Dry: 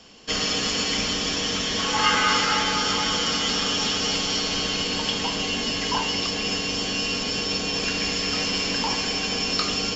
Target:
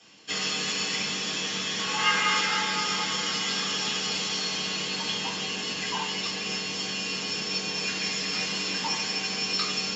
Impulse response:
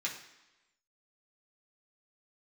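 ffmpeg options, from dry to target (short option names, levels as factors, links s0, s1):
-filter_complex "[0:a]highpass=78[s0];[1:a]atrim=start_sample=2205,atrim=end_sample=3528[s1];[s0][s1]afir=irnorm=-1:irlink=0,volume=0.501"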